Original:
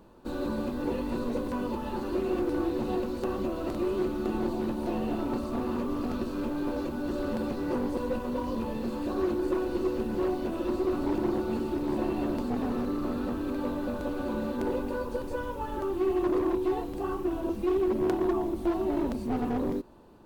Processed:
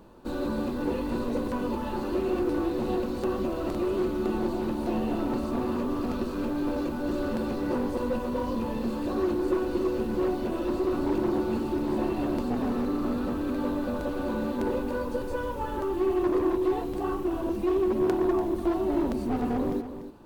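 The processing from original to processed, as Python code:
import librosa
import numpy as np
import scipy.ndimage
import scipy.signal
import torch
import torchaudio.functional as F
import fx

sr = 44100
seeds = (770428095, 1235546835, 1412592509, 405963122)

p1 = 10.0 ** (-32.5 / 20.0) * np.tanh(x / 10.0 ** (-32.5 / 20.0))
p2 = x + F.gain(torch.from_numpy(p1), -8.0).numpy()
y = p2 + 10.0 ** (-11.0 / 20.0) * np.pad(p2, (int(292 * sr / 1000.0), 0))[:len(p2)]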